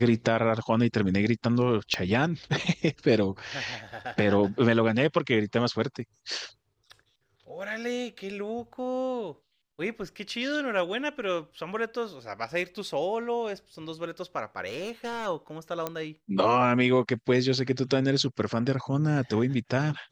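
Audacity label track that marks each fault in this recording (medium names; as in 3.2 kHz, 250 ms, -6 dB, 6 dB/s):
1.940000	1.940000	pop -14 dBFS
6.010000	6.010000	dropout 2.4 ms
14.660000	15.270000	clipped -29.5 dBFS
15.870000	15.870000	pop -15 dBFS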